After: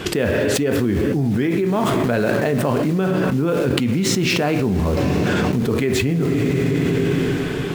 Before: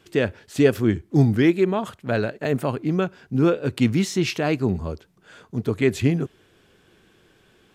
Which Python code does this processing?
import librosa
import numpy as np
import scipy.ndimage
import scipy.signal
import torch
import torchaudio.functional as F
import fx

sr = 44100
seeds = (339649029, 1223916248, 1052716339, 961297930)

p1 = fx.high_shelf(x, sr, hz=3300.0, db=-6.5)
p2 = fx.quant_dither(p1, sr, seeds[0], bits=6, dither='none')
p3 = p1 + (p2 * librosa.db_to_amplitude(-4.5))
p4 = fx.rev_double_slope(p3, sr, seeds[1], early_s=0.4, late_s=3.9, knee_db=-18, drr_db=7.0)
p5 = fx.env_flatten(p4, sr, amount_pct=100)
y = p5 * librosa.db_to_amplitude(-11.0)